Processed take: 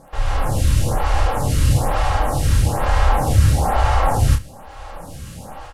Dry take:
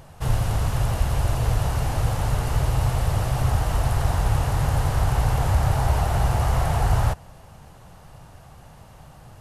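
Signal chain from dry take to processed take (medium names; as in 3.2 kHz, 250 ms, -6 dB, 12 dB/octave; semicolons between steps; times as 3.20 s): CVSD coder 64 kbps; in parallel at -4 dB: saturation -20 dBFS, distortion -12 dB; on the sum: level rider gain up to 12 dB; time stretch by phase-locked vocoder 0.61×; comb 3.7 ms, depth 40%; on a send: early reflections 29 ms -5 dB, 65 ms -17.5 dB; on the sum: crackle 30 per s -33 dBFS; lamp-driven phase shifter 1.1 Hz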